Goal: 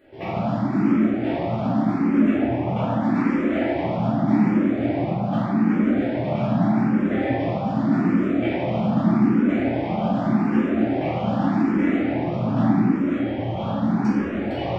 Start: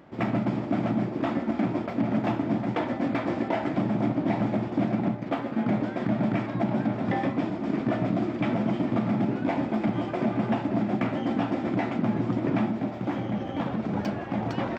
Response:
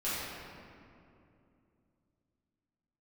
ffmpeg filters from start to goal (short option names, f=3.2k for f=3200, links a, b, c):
-filter_complex "[0:a]asettb=1/sr,asplit=3[a][b][c];[a]atrim=end=2.234[d];[b]atrim=start=2.23:end=3.03,asetpts=PTS-STARTPTS,afade=t=in:d=0.004:c=qsin,afade=t=out:st=0.796:d=0.004:c=qsin,equalizer=f=4.3k:t=o:w=0.66:g=-7.5[e];[c]atrim=start=3.026[f];[d][e]acrossfade=d=0.004:c1=hsin:c2=qsin[g];[g][f]acrossfade=d=0.004:c1=qsin:c2=hsin[h];[1:a]atrim=start_sample=2205[i];[h][i]afir=irnorm=-1:irlink=0,asplit=2[j][k];[k]afreqshift=0.83[l];[j][l]amix=inputs=2:normalize=1"